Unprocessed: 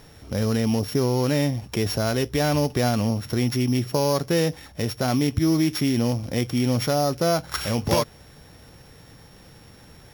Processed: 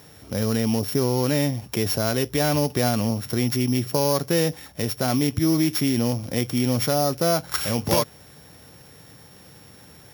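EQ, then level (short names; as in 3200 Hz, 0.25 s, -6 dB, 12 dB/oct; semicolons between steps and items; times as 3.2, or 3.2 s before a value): HPF 89 Hz; high shelf 11000 Hz +10.5 dB; 0.0 dB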